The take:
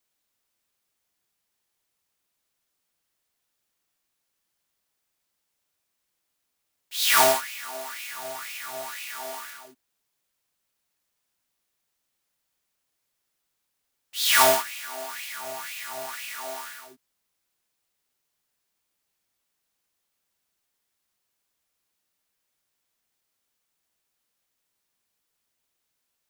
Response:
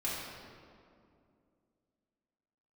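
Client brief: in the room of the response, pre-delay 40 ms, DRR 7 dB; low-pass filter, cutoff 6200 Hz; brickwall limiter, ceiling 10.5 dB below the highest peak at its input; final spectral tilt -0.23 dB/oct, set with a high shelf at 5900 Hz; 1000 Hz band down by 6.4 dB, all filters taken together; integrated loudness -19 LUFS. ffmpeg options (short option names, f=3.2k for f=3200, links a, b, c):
-filter_complex "[0:a]lowpass=6.2k,equalizer=f=1k:t=o:g=-8,highshelf=f=5.9k:g=-3.5,alimiter=limit=-20dB:level=0:latency=1,asplit=2[a][b];[1:a]atrim=start_sample=2205,adelay=40[c];[b][c]afir=irnorm=-1:irlink=0,volume=-12dB[d];[a][d]amix=inputs=2:normalize=0,volume=15.5dB"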